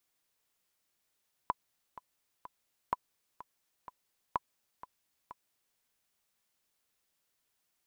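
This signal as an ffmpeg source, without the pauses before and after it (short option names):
-f lavfi -i "aevalsrc='pow(10,(-16-16.5*gte(mod(t,3*60/126),60/126))/20)*sin(2*PI*997*mod(t,60/126))*exp(-6.91*mod(t,60/126)/0.03)':d=4.28:s=44100"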